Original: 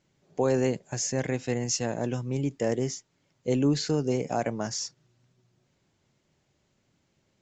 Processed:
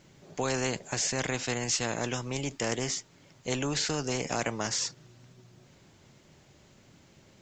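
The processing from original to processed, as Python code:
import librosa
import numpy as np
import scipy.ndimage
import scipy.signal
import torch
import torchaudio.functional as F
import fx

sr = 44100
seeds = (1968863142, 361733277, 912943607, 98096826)

y = fx.spectral_comp(x, sr, ratio=2.0)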